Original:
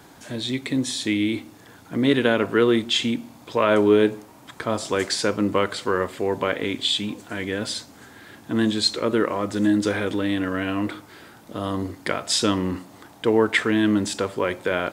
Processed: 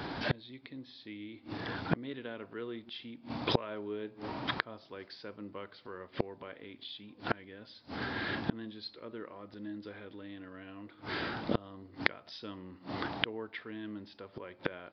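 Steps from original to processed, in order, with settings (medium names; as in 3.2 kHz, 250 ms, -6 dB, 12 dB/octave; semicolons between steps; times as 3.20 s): inverted gate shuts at -23 dBFS, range -32 dB; resampled via 11.025 kHz; trim +9 dB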